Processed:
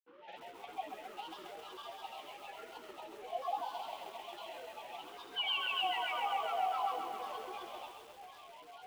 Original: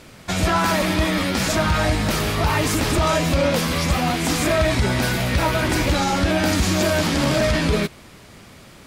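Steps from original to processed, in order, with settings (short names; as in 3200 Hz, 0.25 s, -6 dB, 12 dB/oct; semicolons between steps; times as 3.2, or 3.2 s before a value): dynamic EQ 620 Hz, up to +4 dB, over -31 dBFS, Q 4.1; compressor 3:1, threshold -40 dBFS, peak gain reduction 19.5 dB; vowel filter e; painted sound fall, 5.35–6.96, 590–1900 Hz -39 dBFS; flange 1.1 Hz, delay 8 ms, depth 9.8 ms, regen +80%; whine 850 Hz -58 dBFS; grains, pitch spread up and down by 12 st; speaker cabinet 270–5300 Hz, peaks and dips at 300 Hz -7 dB, 520 Hz -5 dB, 770 Hz +8 dB, 1700 Hz -7 dB, 3000 Hz +7 dB, 4800 Hz -3 dB; thin delay 76 ms, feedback 66%, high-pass 2800 Hz, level -7 dB; lo-fi delay 0.133 s, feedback 80%, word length 10-bit, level -7 dB; gain +4.5 dB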